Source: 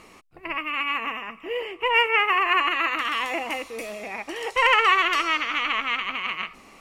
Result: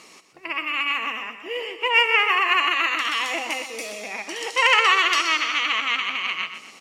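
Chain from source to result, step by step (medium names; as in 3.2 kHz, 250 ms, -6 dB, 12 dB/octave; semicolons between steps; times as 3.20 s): high-pass 170 Hz 12 dB/octave; peaking EQ 5.7 kHz +12 dB 1.9 oct; feedback delay 124 ms, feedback 40%, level -10 dB; trim -2 dB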